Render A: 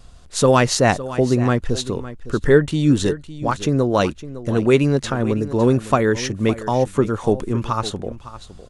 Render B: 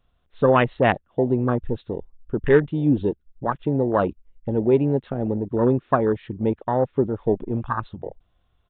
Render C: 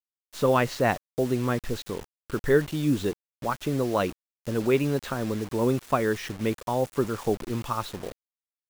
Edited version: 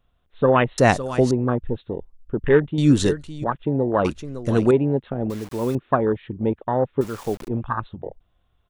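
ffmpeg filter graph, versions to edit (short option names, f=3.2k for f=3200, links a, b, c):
-filter_complex "[0:a]asplit=3[a][b][c];[2:a]asplit=2[d][e];[1:a]asplit=6[f][g][h][i][j][k];[f]atrim=end=0.782[l];[a]atrim=start=0.778:end=1.312[m];[g]atrim=start=1.308:end=2.782[n];[b]atrim=start=2.778:end=3.442[o];[h]atrim=start=3.438:end=4.052[p];[c]atrim=start=4.048:end=4.712[q];[i]atrim=start=4.708:end=5.302[r];[d]atrim=start=5.298:end=5.752[s];[j]atrim=start=5.748:end=7.012[t];[e]atrim=start=7.008:end=7.482[u];[k]atrim=start=7.478[v];[l][m]acrossfade=d=0.004:c1=hsin:c2=hsin[w];[w][n]acrossfade=d=0.004:c1=hsin:c2=hsin[x];[x][o]acrossfade=d=0.004:c1=hsin:c2=hsin[y];[y][p]acrossfade=d=0.004:c1=hsin:c2=hsin[z];[z][q]acrossfade=d=0.004:c1=hsin:c2=hsin[aa];[aa][r]acrossfade=d=0.004:c1=hsin:c2=hsin[ab];[ab][s]acrossfade=d=0.004:c1=hsin:c2=hsin[ac];[ac][t]acrossfade=d=0.004:c1=hsin:c2=hsin[ad];[ad][u]acrossfade=d=0.004:c1=hsin:c2=hsin[ae];[ae][v]acrossfade=d=0.004:c1=hsin:c2=hsin"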